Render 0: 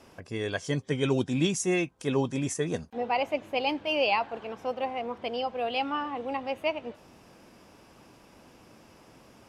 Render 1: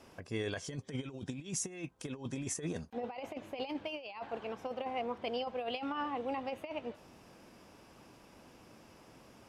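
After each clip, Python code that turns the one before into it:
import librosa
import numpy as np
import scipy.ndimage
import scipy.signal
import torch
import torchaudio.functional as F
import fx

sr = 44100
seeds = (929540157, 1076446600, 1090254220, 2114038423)

y = fx.over_compress(x, sr, threshold_db=-31.0, ratio=-0.5)
y = y * librosa.db_to_amplitude(-6.5)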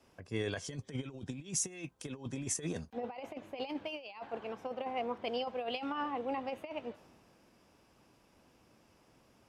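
y = fx.band_widen(x, sr, depth_pct=40)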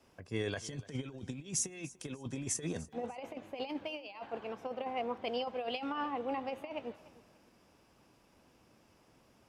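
y = fx.echo_feedback(x, sr, ms=294, feedback_pct=30, wet_db=-20.0)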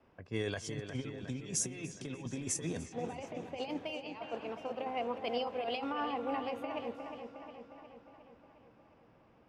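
y = fx.echo_wet_lowpass(x, sr, ms=359, feedback_pct=61, hz=3500.0, wet_db=-8)
y = fx.env_lowpass(y, sr, base_hz=2100.0, full_db=-35.5)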